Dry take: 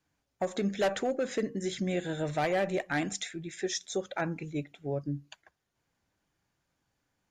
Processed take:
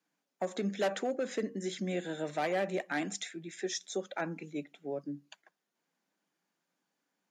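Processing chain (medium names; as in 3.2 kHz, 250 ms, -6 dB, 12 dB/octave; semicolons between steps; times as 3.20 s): steep high-pass 170 Hz 48 dB/octave; trim -3 dB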